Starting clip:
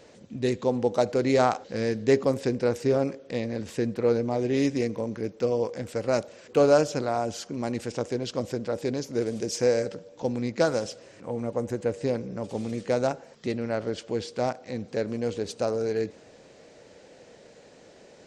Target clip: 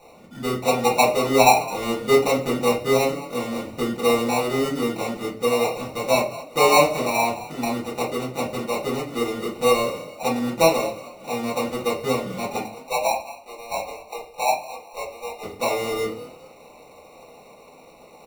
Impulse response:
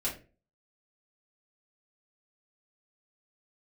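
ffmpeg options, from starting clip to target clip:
-filter_complex "[0:a]asettb=1/sr,asplit=3[a][b][c];[a]atrim=end=12.604[d];[b]atrim=start=12.6:end=15.43,asetpts=PTS-STARTPTS,afade=t=in:d=0.004:c=qsin,afade=t=out:st=2.826:d=0.004:c=qsin,highpass=f=600:w=0.5412,highpass=f=600:w=1.3066[e];[c]atrim=start=15.426[f];[d][e]acrossfade=d=0.004:c1=hsin:c2=qsin[g];[g][f]acrossfade=d=0.004:c1=qsin:c2=hsin,acrusher=bits=5:mode=log:mix=0:aa=0.000001,lowpass=f=880:t=q:w=6.8,acrusher=samples=27:mix=1:aa=0.000001,asplit=4[h][i][j][k];[i]adelay=214,afreqshift=37,volume=-16.5dB[l];[j]adelay=428,afreqshift=74,volume=-26.7dB[m];[k]adelay=642,afreqshift=111,volume=-36.8dB[n];[h][l][m][n]amix=inputs=4:normalize=0[o];[1:a]atrim=start_sample=2205[p];[o][p]afir=irnorm=-1:irlink=0,volume=-5dB"

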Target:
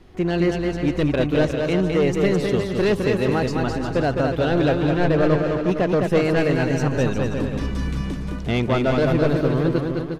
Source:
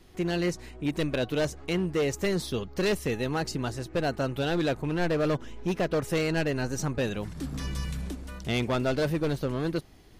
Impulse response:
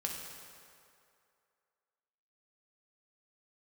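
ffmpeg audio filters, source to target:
-af "lowpass=f=2k:p=1,aecho=1:1:210|357|459.9|531.9|582.4:0.631|0.398|0.251|0.158|0.1,volume=7dB"

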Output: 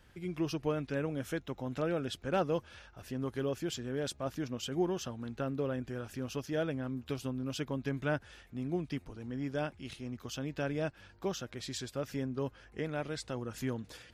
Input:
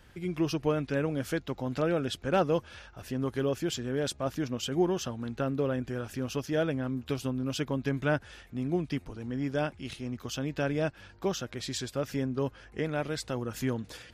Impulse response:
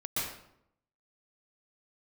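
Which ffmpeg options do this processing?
-filter_complex "[0:a]asettb=1/sr,asplit=3[a][b][c];[a]atrim=end=1.004[d];[b]atrim=start=1:end=1.8,asetpts=PTS-STARTPTS,afade=t=in:d=0.004:c=qsin,afade=t=out:st=0.796:d=0.004:c=qsin,bandreject=f=4.6k:w=5.9[e];[c]atrim=start=1.796[f];[d][e]acrossfade=d=0.004:c1=hsin:c2=qsin[g];[g][f]acrossfade=d=0.004:c1=qsin:c2=hsin,asettb=1/sr,asplit=3[h][i][j];[h]atrim=end=12.994[k];[i]atrim=start=12.99:end=13.58,asetpts=PTS-STARTPTS,afade=t=in:d=0.004:c=qsin,afade=t=out:st=0.586:d=0.004:c=qsin,lowpass=f=11k:w=0.5412,lowpass=f=11k:w=1.3066[l];[j]atrim=start=13.576[m];[k][l]acrossfade=d=0.004:c1=hsin:c2=qsin[n];[n][m]acrossfade=d=0.004:c1=qsin:c2=hsin,volume=-5dB"

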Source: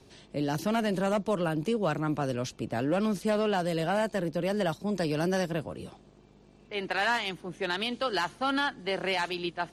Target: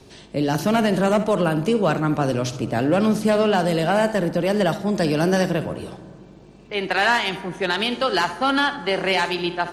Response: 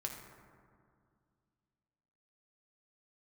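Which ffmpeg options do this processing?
-filter_complex "[0:a]asplit=2[a][b];[1:a]atrim=start_sample=2205,adelay=64[c];[b][c]afir=irnorm=-1:irlink=0,volume=-10.5dB[d];[a][d]amix=inputs=2:normalize=0,volume=8.5dB"

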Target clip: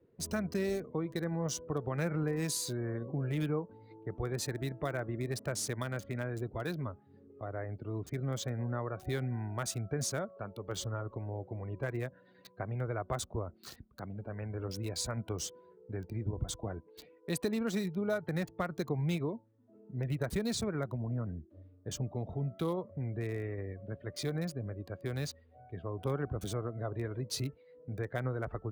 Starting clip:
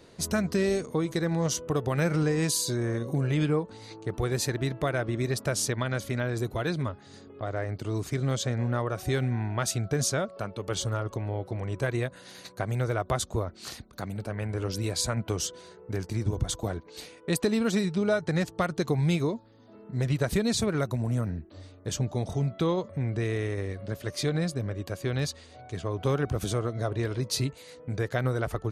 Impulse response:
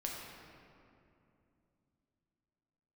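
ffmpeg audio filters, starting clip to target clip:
-filter_complex "[0:a]afftdn=nr=16:nf=-45,acrossover=split=230|2800[a][b][c];[c]acrusher=bits=6:mix=0:aa=0.000001[d];[a][b][d]amix=inputs=3:normalize=0,volume=-7.5dB"

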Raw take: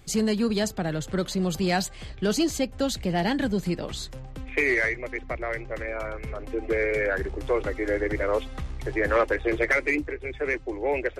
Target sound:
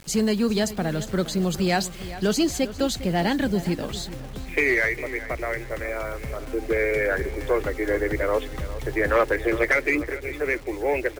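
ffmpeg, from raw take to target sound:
-filter_complex "[0:a]acrusher=bits=7:mix=0:aa=0.000001,asplit=2[a][b];[b]adelay=404,lowpass=f=4.7k:p=1,volume=-14.5dB,asplit=2[c][d];[d]adelay=404,lowpass=f=4.7k:p=1,volume=0.4,asplit=2[e][f];[f]adelay=404,lowpass=f=4.7k:p=1,volume=0.4,asplit=2[g][h];[h]adelay=404,lowpass=f=4.7k:p=1,volume=0.4[i];[a][c][e][g][i]amix=inputs=5:normalize=0,volume=2dB"

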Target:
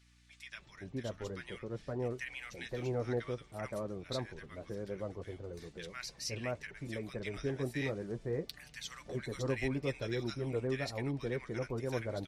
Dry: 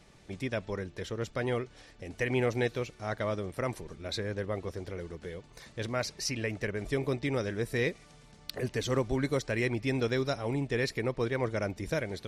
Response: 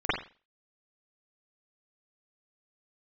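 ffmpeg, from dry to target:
-filter_complex "[0:a]flanger=delay=5.3:depth=2.8:regen=-43:speed=0.92:shape=sinusoidal,acrossover=split=1300[a][b];[a]adelay=520[c];[c][b]amix=inputs=2:normalize=0,aeval=exprs='val(0)+0.000708*(sin(2*PI*60*n/s)+sin(2*PI*2*60*n/s)/2+sin(2*PI*3*60*n/s)/3+sin(2*PI*4*60*n/s)/4+sin(2*PI*5*60*n/s)/5)':c=same,volume=-2dB"

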